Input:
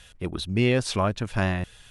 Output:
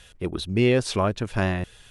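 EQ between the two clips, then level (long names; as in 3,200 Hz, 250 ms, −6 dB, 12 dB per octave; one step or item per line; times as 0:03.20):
parametric band 400 Hz +4.5 dB 0.86 octaves
0.0 dB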